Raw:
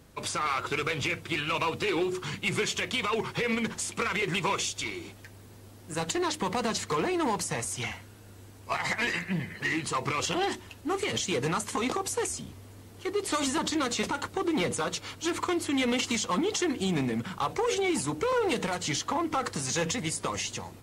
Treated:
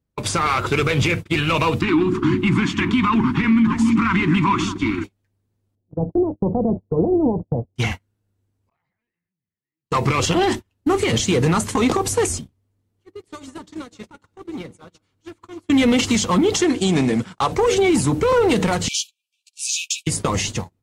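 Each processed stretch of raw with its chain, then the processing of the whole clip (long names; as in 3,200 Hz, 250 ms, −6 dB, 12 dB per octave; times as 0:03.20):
0:01.81–0:05.04: drawn EQ curve 160 Hz 0 dB, 290 Hz +14 dB, 500 Hz −28 dB, 1,000 Hz +6 dB, 12,000 Hz −17 dB + echo through a band-pass that steps 306 ms, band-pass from 310 Hz, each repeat 1.4 octaves, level −5.5 dB
0:05.75–0:07.76: Butterworth low-pass 730 Hz + shaped tremolo triangle 7.4 Hz, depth 35%
0:08.69–0:09.91: gate with flip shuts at −34 dBFS, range −37 dB + high-frequency loss of the air 210 metres + level that may fall only so fast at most 29 dB per second
0:12.89–0:15.70: downward compressor 2.5 to 1, threshold −41 dBFS + delay that swaps between a low-pass and a high-pass 150 ms, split 2,400 Hz, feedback 69%, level −11.5 dB
0:16.64–0:17.52: low-pass filter 9,600 Hz 24 dB per octave + bass and treble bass −8 dB, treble +5 dB
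0:18.88–0:20.07: linear-phase brick-wall high-pass 2,300 Hz + double-tracking delay 14 ms −5.5 dB
whole clip: noise gate −36 dBFS, range −38 dB; low-shelf EQ 320 Hz +10.5 dB; brickwall limiter −18 dBFS; level +8.5 dB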